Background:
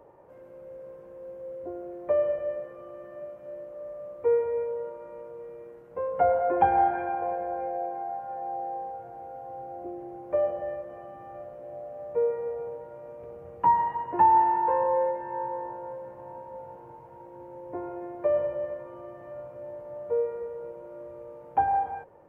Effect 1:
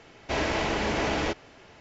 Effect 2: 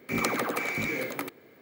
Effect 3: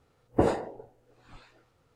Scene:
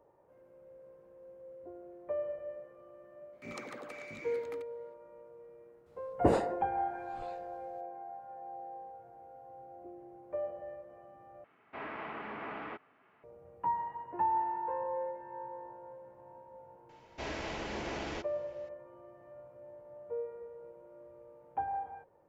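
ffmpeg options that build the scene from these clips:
-filter_complex "[1:a]asplit=2[a][b];[0:a]volume=-11.5dB[c];[2:a]lowpass=7.5k[d];[a]highpass=200,equalizer=f=340:t=q:w=4:g=-4,equalizer=f=540:t=q:w=4:g=-6,equalizer=f=1.2k:t=q:w=4:g=8,lowpass=f=2.4k:w=0.5412,lowpass=f=2.4k:w=1.3066[e];[c]asplit=2[f][g];[f]atrim=end=11.444[h];[e]atrim=end=1.8,asetpts=PTS-STARTPTS,volume=-13.5dB[i];[g]atrim=start=13.236[j];[d]atrim=end=1.61,asetpts=PTS-STARTPTS,volume=-17dB,afade=t=in:d=0.004:c=hsin,afade=t=out:st=1.606:d=0.004:c=hsin,adelay=146853S[k];[3:a]atrim=end=1.95,asetpts=PTS-STARTPTS,volume=-3dB,afade=t=in:d=0.004:c=hsin,afade=t=out:st=1.946:d=0.004:c=hsin,adelay=5860[l];[b]atrim=end=1.8,asetpts=PTS-STARTPTS,volume=-12dB,afade=t=in:d=0.004:c=hsin,afade=t=out:st=1.796:d=0.004:c=hsin,adelay=16890[m];[h][i]acrossfade=d=0.004:c1=hsin:c2=hsin[n];[n][j]acrossfade=d=0.004:c1=hsin:c2=hsin[o];[o][k][l][m]amix=inputs=4:normalize=0"

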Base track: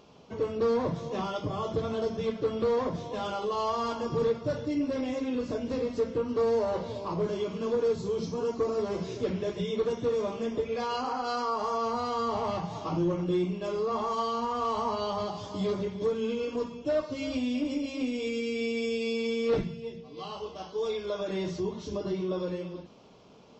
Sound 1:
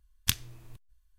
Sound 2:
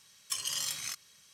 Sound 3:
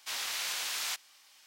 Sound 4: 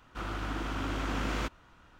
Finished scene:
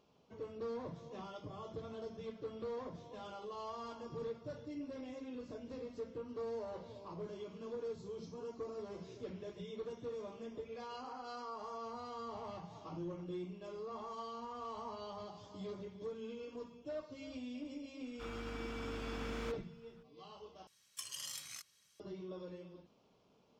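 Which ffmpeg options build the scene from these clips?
-filter_complex "[0:a]volume=-15.5dB,asplit=2[a][b];[a]atrim=end=20.674[c];[2:a]atrim=end=1.33,asetpts=PTS-STARTPTS,volume=-11dB[d];[b]atrim=start=21.996[e];[4:a]atrim=end=1.99,asetpts=PTS-STARTPTS,volume=-11.5dB,afade=t=in:d=0.004:c=hsin,afade=t=out:st=1.986:d=0.004:c=hsin,adelay=18040[f];[c][d]acrossfade=d=0.004:c1=hsin:c2=hsin[g];[g][e]acrossfade=d=0.004:c1=hsin:c2=hsin[h];[h][f]amix=inputs=2:normalize=0"

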